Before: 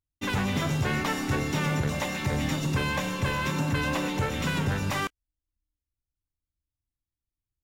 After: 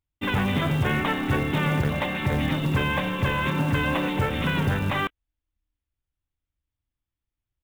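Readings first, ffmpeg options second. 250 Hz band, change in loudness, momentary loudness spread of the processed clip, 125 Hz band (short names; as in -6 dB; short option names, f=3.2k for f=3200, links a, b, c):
+3.5 dB, +3.5 dB, 2 LU, +3.5 dB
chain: -af "aresample=8000,aresample=44100,acrusher=bits=6:mode=log:mix=0:aa=0.000001,volume=3.5dB"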